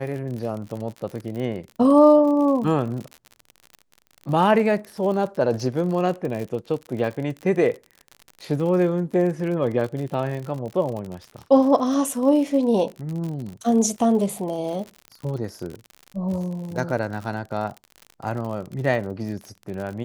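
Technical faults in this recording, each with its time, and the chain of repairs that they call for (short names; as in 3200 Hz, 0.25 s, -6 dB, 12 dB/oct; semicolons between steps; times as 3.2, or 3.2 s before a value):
crackle 57/s -30 dBFS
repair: de-click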